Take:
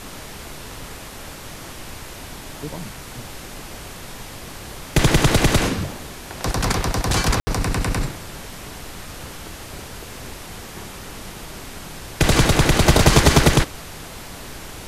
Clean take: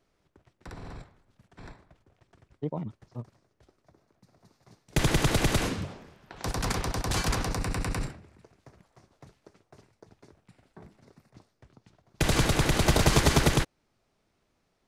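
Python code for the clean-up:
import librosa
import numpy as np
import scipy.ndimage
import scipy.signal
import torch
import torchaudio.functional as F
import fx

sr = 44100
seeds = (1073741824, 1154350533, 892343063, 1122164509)

y = fx.fix_ambience(x, sr, seeds[0], print_start_s=0.95, print_end_s=1.45, start_s=7.4, end_s=7.47)
y = fx.noise_reduce(y, sr, print_start_s=0.95, print_end_s=1.45, reduce_db=30.0)
y = fx.gain(y, sr, db=fx.steps((0.0, 0.0), (4.14, -8.5)))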